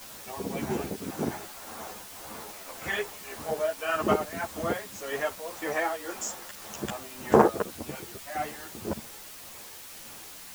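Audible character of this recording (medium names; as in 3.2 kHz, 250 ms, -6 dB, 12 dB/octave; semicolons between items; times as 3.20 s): tremolo triangle 1.8 Hz, depth 85%; a quantiser's noise floor 8-bit, dither triangular; a shimmering, thickened sound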